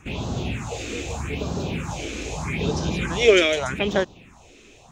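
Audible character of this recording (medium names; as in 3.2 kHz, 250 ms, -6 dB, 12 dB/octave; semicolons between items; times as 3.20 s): phasing stages 4, 0.81 Hz, lowest notch 140–2300 Hz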